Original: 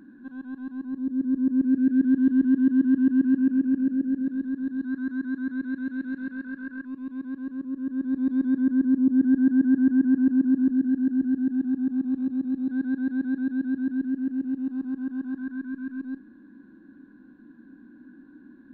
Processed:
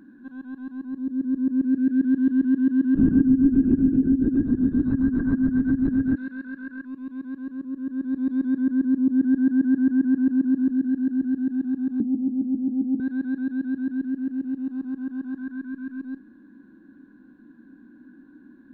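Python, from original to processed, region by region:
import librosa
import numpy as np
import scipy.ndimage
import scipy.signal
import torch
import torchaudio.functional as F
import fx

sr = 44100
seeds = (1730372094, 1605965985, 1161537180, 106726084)

y = fx.chain(x, sr, fx.tilt_shelf(db=6.5, hz=740.0),
    fx.lpc_vocoder(seeds[0], excitation='whisper', order=16),
    fx.band_squash(depth_pct=70), at=(2.95, 6.16))
y = fx.chain(y, sr, fx.steep_lowpass(hz=800.0, slope=72),
    fx.peak_eq(hz=230.0, db=9.0, octaves=0.31),
    fx.doubler(ms=14.0, db=-7), at=(12.0, 13.0))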